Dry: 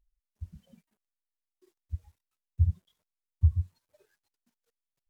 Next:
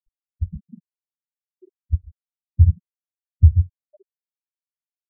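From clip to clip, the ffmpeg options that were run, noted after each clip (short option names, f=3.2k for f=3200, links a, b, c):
-filter_complex "[0:a]asplit=2[a][b];[b]acompressor=threshold=-32dB:ratio=6,volume=3dB[c];[a][c]amix=inputs=2:normalize=0,afftfilt=real='re*gte(hypot(re,im),0.0178)':imag='im*gte(hypot(re,im),0.0178)':win_size=1024:overlap=0.75,volume=8.5dB"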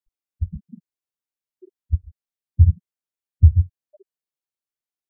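-af "equalizer=f=380:w=1.5:g=3.5"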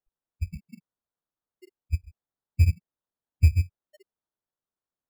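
-filter_complex "[0:a]asplit=2[a][b];[b]asoftclip=type=hard:threshold=-16.5dB,volume=-11dB[c];[a][c]amix=inputs=2:normalize=0,acrusher=samples=18:mix=1:aa=0.000001,volume=-7.5dB"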